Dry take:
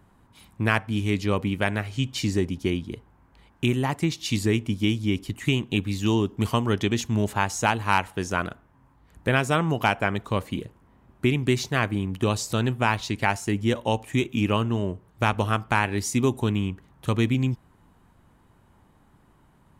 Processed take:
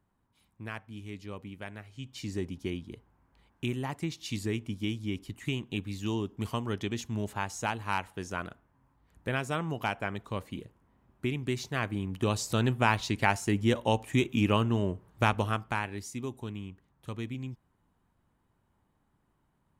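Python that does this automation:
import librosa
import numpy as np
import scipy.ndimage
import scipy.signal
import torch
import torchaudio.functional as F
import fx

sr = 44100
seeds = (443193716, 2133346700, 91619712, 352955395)

y = fx.gain(x, sr, db=fx.line((1.92, -17.5), (2.42, -9.5), (11.51, -9.5), (12.68, -2.5), (15.23, -2.5), (16.15, -14.5)))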